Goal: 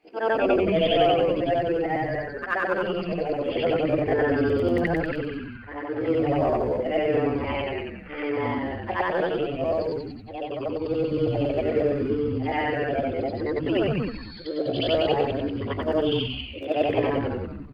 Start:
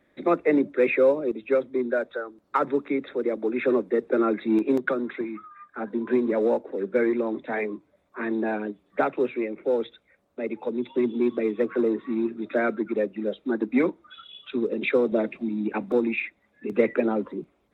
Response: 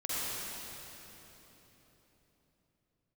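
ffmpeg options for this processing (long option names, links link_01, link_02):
-filter_complex "[0:a]afftfilt=real='re':imag='-im':win_size=8192:overlap=0.75,asplit=5[link_01][link_02][link_03][link_04][link_05];[link_02]adelay=188,afreqshift=-140,volume=-3.5dB[link_06];[link_03]adelay=376,afreqshift=-280,volume=-12.9dB[link_07];[link_04]adelay=564,afreqshift=-420,volume=-22.2dB[link_08];[link_05]adelay=752,afreqshift=-560,volume=-31.6dB[link_09];[link_01][link_06][link_07][link_08][link_09]amix=inputs=5:normalize=0,asetrate=57191,aresample=44100,atempo=0.771105,volume=3.5dB"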